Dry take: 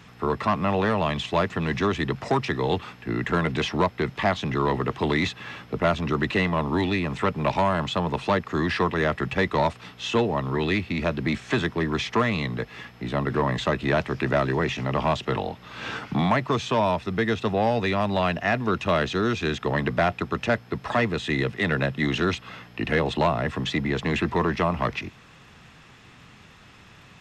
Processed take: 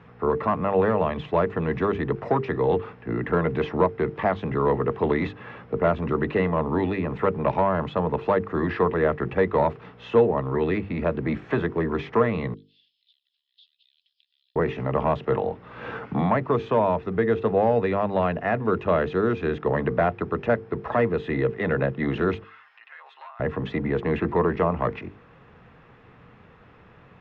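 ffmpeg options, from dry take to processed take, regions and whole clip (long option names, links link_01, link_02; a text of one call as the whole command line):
ffmpeg -i in.wav -filter_complex "[0:a]asettb=1/sr,asplit=3[link_01][link_02][link_03];[link_01]atrim=end=12.544[link_04];[link_02]atrim=start=12.54:end=14.56,asetpts=PTS-STARTPTS,afade=type=in:duration=0.004:curve=qsin,afade=type=out:start_time=2.016:duration=0.004:curve=qsin,aemphasis=mode=production:type=50fm,acompressor=threshold=-36dB:ratio=4:attack=3.2:release=140:knee=1:detection=peak,asuperpass=centerf=4000:order=8:qfactor=2[link_05];[link_03]atrim=start=14.556[link_06];[link_04][link_05]acrossfade=duration=0.004:curve1=hsin:curve2=qsin[link_07];[link_07][link_06]acrossfade=duration=0.004:curve1=qsin:curve2=hsin,asettb=1/sr,asplit=3[link_08][link_09][link_10];[link_08]atrim=end=22.444[link_11];[link_09]atrim=start=22.44:end=23.4,asetpts=PTS-STARTPTS,afade=type=in:duration=0.004:curve=qsin,afade=type=out:start_time=0.956:duration=0.004:curve=qsin,highpass=frequency=1100:width=0.5412,highpass=frequency=1100:width=1.3066,acompressor=threshold=-47dB:ratio=2.5:attack=3.2:release=140:knee=1:detection=peak,aecho=1:1:7.5:0.91,atrim=end_sample=42336[link_12];[link_10]atrim=start=23.396[link_13];[link_11][link_12]acrossfade=duration=0.004:curve1=hsin:curve2=qsin[link_14];[link_14][link_13]acrossfade=duration=0.004:curve1=qsin:curve2=hsin,lowpass=1600,equalizer=frequency=470:width_type=o:width=0.36:gain=8,bandreject=frequency=50:width_type=h:width=6,bandreject=frequency=100:width_type=h:width=6,bandreject=frequency=150:width_type=h:width=6,bandreject=frequency=200:width_type=h:width=6,bandreject=frequency=250:width_type=h:width=6,bandreject=frequency=300:width_type=h:width=6,bandreject=frequency=350:width_type=h:width=6,bandreject=frequency=400:width_type=h:width=6,bandreject=frequency=450:width_type=h:width=6" out.wav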